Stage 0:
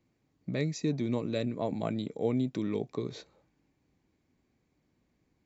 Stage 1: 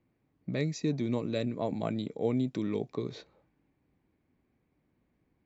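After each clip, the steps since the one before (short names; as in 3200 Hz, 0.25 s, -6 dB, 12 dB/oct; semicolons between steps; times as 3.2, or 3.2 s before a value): low-pass opened by the level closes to 2600 Hz, open at -25.5 dBFS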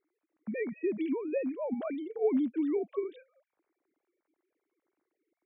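sine-wave speech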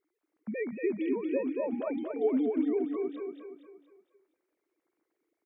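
feedback echo 0.234 s, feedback 43%, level -4.5 dB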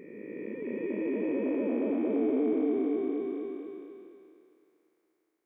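time blur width 1.08 s; spring tank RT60 3 s, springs 60 ms, chirp 50 ms, DRR 18 dB; gain +7 dB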